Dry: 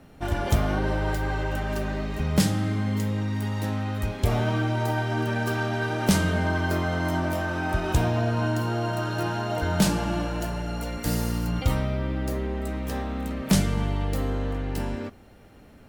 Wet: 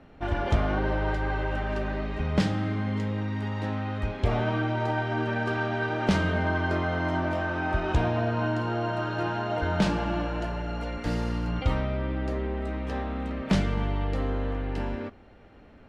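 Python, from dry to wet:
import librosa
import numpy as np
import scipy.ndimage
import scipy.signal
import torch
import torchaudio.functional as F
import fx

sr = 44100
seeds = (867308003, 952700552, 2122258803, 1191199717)

y = scipy.signal.sosfilt(scipy.signal.butter(2, 3200.0, 'lowpass', fs=sr, output='sos'), x)
y = fx.peak_eq(y, sr, hz=140.0, db=-4.5, octaves=1.4)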